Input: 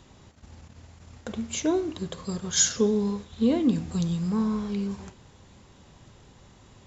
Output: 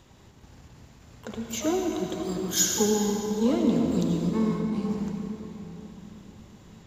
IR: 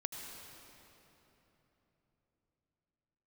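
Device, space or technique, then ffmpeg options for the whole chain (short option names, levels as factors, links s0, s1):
shimmer-style reverb: -filter_complex "[0:a]asettb=1/sr,asplit=3[s0][s1][s2];[s0]atrim=end=4.304[s3];[s1]atrim=start=4.3:end=4.76,asetpts=PTS-STARTPTS,afade=t=in:d=0.004:c=qsin,afade=t=out:st=0.456:d=0.004:c=qsin,agate=range=0.112:threshold=0.0447:ratio=16:detection=peak[s4];[s2]atrim=start=4.756[s5];[s3][s4]acrossfade=d=0.004:c1=hsin:c2=qsin[s6];[s6][s5]acrossfade=d=0.004:c1=qsin:c2=hsin,asplit=2[s7][s8];[s8]asetrate=88200,aresample=44100,atempo=0.5,volume=0.282[s9];[s7][s9]amix=inputs=2:normalize=0[s10];[1:a]atrim=start_sample=2205[s11];[s10][s11]afir=irnorm=-1:irlink=0"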